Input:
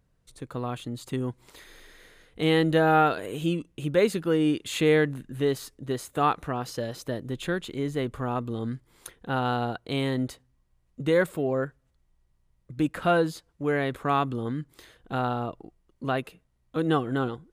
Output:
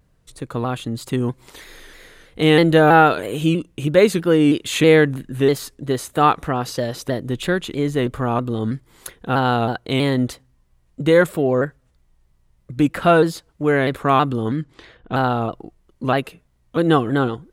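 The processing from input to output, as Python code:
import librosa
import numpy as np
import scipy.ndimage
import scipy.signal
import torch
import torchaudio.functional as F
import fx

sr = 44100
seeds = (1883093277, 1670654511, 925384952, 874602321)

y = fx.env_lowpass(x, sr, base_hz=2500.0, full_db=-26.5, at=(14.56, 15.23))
y = fx.vibrato_shape(y, sr, shape='saw_down', rate_hz=3.1, depth_cents=100.0)
y = F.gain(torch.from_numpy(y), 8.5).numpy()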